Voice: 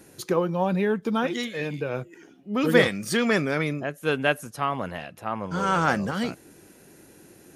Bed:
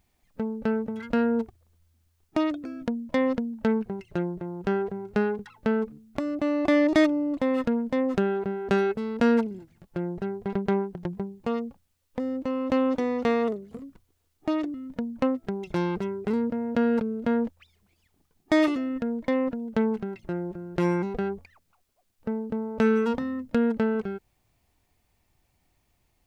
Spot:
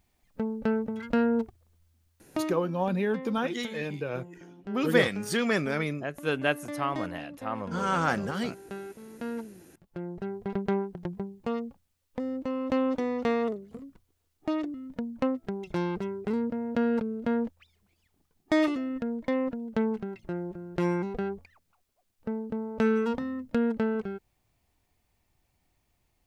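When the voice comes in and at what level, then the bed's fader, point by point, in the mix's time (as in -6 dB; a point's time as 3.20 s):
2.20 s, -4.0 dB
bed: 2.16 s -1 dB
2.95 s -16.5 dB
9.09 s -16.5 dB
10.36 s -3 dB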